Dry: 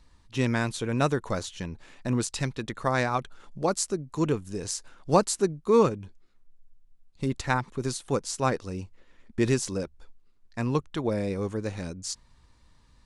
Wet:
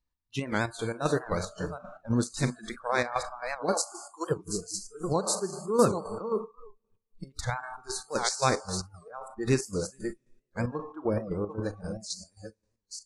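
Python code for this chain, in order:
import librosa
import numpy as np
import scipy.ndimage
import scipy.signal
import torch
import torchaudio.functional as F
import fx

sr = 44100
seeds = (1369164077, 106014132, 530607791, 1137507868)

y = fx.reverse_delay(x, sr, ms=464, wet_db=-7.0)
y = fx.rev_schroeder(y, sr, rt60_s=1.6, comb_ms=29, drr_db=9.0)
y = fx.chopper(y, sr, hz=3.8, depth_pct=60, duty_pct=50)
y = fx.highpass(y, sr, hz=530.0, slope=12, at=(3.73, 4.3), fade=0.02)
y = fx.peak_eq(y, sr, hz=5400.0, db=8.5, octaves=1.8, at=(8.1, 8.8), fade=0.02)
y = fx.noise_reduce_blind(y, sr, reduce_db=26)
y = fx.high_shelf(y, sr, hz=3500.0, db=-7.0, at=(10.83, 11.5))
y = fx.record_warp(y, sr, rpm=78.0, depth_cents=160.0)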